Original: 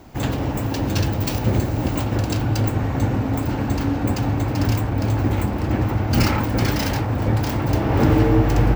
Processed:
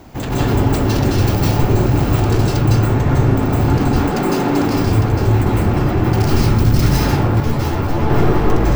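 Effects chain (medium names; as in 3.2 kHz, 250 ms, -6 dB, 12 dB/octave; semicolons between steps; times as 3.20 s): one-sided wavefolder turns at -17 dBFS; 3.80–4.62 s: steep high-pass 160 Hz 36 dB/octave; 6.22–6.82 s: tone controls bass +10 dB, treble +7 dB; peak limiter -15.5 dBFS, peak gain reduction 14.5 dB; saturation -22.5 dBFS, distortion -14 dB; reverberation RT60 0.45 s, pre-delay 152 ms, DRR -6 dB; 7.40–8.10 s: three-phase chorus; trim +4 dB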